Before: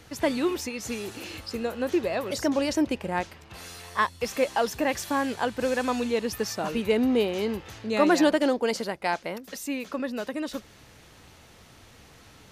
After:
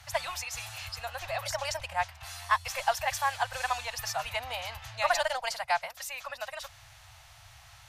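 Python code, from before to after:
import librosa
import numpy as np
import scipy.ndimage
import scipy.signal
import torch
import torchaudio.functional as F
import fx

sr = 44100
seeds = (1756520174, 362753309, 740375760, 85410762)

y = fx.cheby_harmonics(x, sr, harmonics=(4, 5), levels_db=(-27, -34), full_scale_db=-9.0)
y = fx.stretch_vocoder(y, sr, factor=0.63)
y = scipy.signal.sosfilt(scipy.signal.ellip(3, 1.0, 40, [120.0, 690.0], 'bandstop', fs=sr, output='sos'), y)
y = F.gain(torch.from_numpy(y), 1.0).numpy()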